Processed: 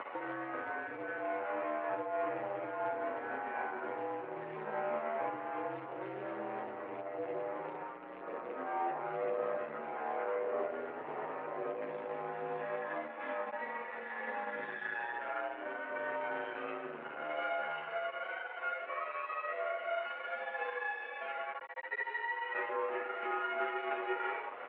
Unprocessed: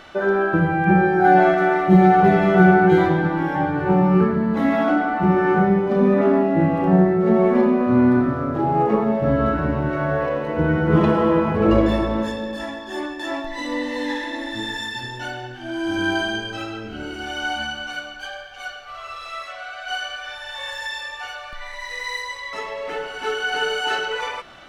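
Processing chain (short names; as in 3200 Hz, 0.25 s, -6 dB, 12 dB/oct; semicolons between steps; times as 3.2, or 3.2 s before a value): tilt -2.5 dB/oct; limiter -9 dBFS, peak gain reduction 10.5 dB; compressor 8:1, threshold -26 dBFS, peak gain reduction 13.5 dB; loudspeakers at several distances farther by 19 m -3 dB, 31 m -5 dB, 45 m -11 dB; upward compressor, threshold -27 dBFS; half-wave rectifier; short-mantissa float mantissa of 2-bit; chorus voices 6, 0.22 Hz, delay 10 ms, depth 1.1 ms; mistuned SSB -64 Hz 460–2500 Hz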